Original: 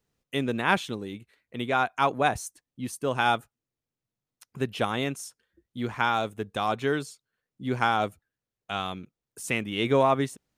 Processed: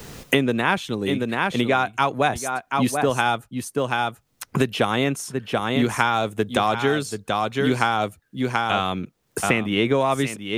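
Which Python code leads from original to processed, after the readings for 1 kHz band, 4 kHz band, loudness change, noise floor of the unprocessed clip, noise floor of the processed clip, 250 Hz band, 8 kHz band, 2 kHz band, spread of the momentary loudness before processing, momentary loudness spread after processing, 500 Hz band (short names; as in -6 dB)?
+5.0 dB, +7.0 dB, +5.0 dB, under -85 dBFS, -67 dBFS, +8.5 dB, +8.0 dB, +6.0 dB, 15 LU, 7 LU, +6.0 dB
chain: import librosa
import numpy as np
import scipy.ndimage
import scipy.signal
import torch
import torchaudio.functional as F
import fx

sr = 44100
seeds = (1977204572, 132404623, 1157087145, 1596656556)

y = fx.rider(x, sr, range_db=4, speed_s=0.5)
y = y + 10.0 ** (-11.0 / 20.0) * np.pad(y, (int(733 * sr / 1000.0), 0))[:len(y)]
y = fx.band_squash(y, sr, depth_pct=100)
y = F.gain(torch.from_numpy(y), 6.0).numpy()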